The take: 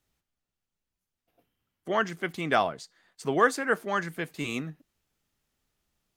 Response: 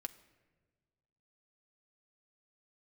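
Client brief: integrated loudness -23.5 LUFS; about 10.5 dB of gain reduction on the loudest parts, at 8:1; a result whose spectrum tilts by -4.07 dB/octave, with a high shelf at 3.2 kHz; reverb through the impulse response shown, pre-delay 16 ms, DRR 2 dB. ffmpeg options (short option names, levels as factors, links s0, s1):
-filter_complex "[0:a]highshelf=f=3200:g=4.5,acompressor=threshold=0.0501:ratio=8,asplit=2[s0][s1];[1:a]atrim=start_sample=2205,adelay=16[s2];[s1][s2]afir=irnorm=-1:irlink=0,volume=1.12[s3];[s0][s3]amix=inputs=2:normalize=0,volume=2.51"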